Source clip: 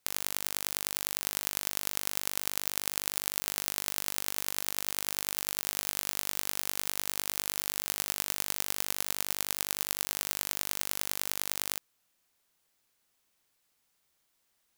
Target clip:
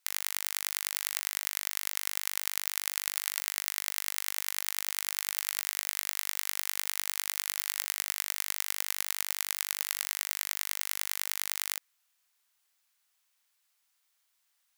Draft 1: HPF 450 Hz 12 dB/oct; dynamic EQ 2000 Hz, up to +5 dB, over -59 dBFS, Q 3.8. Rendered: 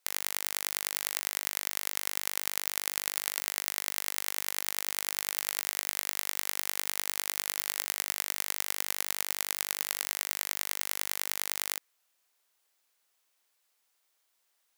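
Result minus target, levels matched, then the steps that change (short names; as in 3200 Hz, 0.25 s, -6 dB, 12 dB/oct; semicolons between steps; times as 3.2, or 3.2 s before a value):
500 Hz band +8.5 dB
change: HPF 1000 Hz 12 dB/oct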